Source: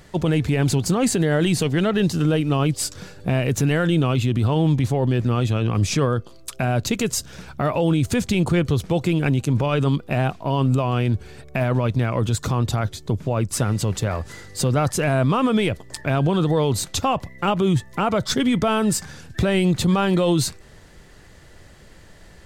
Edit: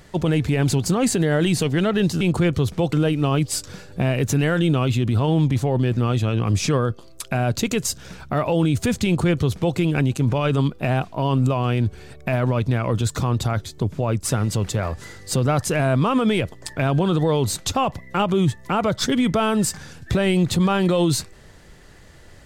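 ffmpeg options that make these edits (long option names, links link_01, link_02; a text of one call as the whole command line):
ffmpeg -i in.wav -filter_complex "[0:a]asplit=3[link_01][link_02][link_03];[link_01]atrim=end=2.212[link_04];[link_02]atrim=start=8.328:end=9.052[link_05];[link_03]atrim=start=2.208[link_06];[link_04][link_05]acrossfade=duration=0.004:curve1=hsin:curve2=hsin[link_07];[link_07][link_06]acrossfade=duration=0.004:curve1=hsin:curve2=hsin" out.wav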